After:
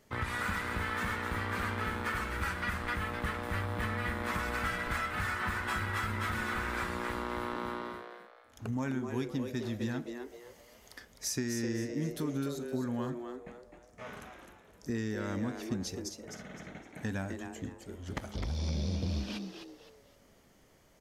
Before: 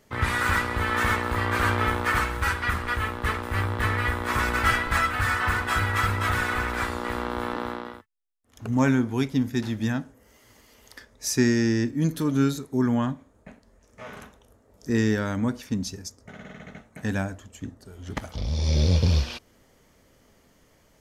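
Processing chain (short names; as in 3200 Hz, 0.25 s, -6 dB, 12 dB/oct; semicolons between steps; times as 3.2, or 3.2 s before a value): compressor, threshold -27 dBFS, peak gain reduction 11 dB; on a send: frequency-shifting echo 0.257 s, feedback 32%, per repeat +120 Hz, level -7 dB; on the sum: gain -4.5 dB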